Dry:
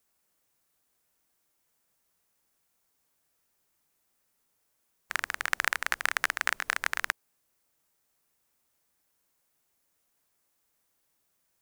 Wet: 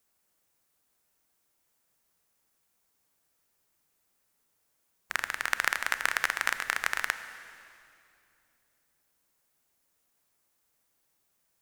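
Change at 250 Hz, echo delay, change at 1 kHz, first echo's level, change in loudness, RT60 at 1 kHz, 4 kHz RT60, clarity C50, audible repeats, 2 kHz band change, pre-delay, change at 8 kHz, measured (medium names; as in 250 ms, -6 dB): +0.5 dB, no echo, +0.5 dB, no echo, +0.5 dB, 2.4 s, 2.4 s, 11.0 dB, no echo, +0.5 dB, 27 ms, +0.5 dB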